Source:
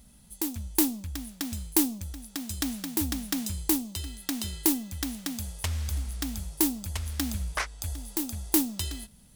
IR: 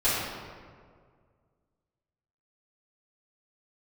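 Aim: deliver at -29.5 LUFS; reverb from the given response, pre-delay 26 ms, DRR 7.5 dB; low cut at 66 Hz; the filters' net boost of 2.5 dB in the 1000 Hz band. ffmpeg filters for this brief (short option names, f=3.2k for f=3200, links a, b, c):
-filter_complex "[0:a]highpass=66,equalizer=f=1k:t=o:g=3,asplit=2[a][b];[1:a]atrim=start_sample=2205,adelay=26[c];[b][c]afir=irnorm=-1:irlink=0,volume=-21.5dB[d];[a][d]amix=inputs=2:normalize=0"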